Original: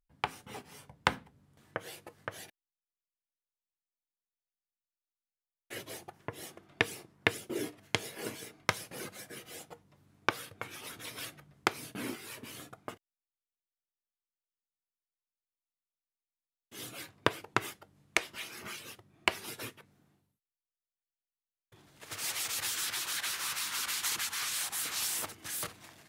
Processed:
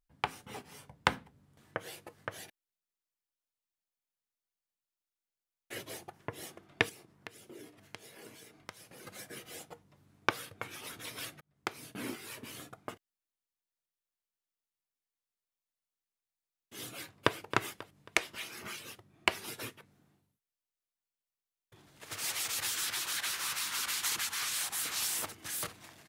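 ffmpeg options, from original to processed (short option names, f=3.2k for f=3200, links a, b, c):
-filter_complex "[0:a]asettb=1/sr,asplit=3[a][b][c];[a]atrim=end=6.894[d];[b]atrim=start=6.89:end=9.07,asetpts=PTS-STARTPTS,afade=t=in:d=0.004:c=qsin,afade=t=out:st=2.176:d=0.004:c=qsin,acompressor=threshold=-54dB:ratio=2.5:attack=3.2:release=140:knee=1:detection=peak[e];[c]atrim=start=9.066[f];[d][e]acrossfade=d=0.004:c1=hsin:c2=qsin[g];[g][f]acrossfade=d=0.004:c1=qsin:c2=hsin,asplit=2[h][i];[i]afade=t=in:st=16.96:d=0.01,afade=t=out:st=17.36:d=0.01,aecho=0:1:270|540|810|1080:0.266073|0.106429|0.0425716|0.0170286[j];[h][j]amix=inputs=2:normalize=0,asplit=2[k][l];[k]atrim=end=11.41,asetpts=PTS-STARTPTS,afade=t=out:st=11.406:d=0.004:c=hsin[m];[l]atrim=start=11.41,asetpts=PTS-STARTPTS,afade=t=in:d=0.97:c=qsin[n];[m][n]concat=n=2:v=0:a=1"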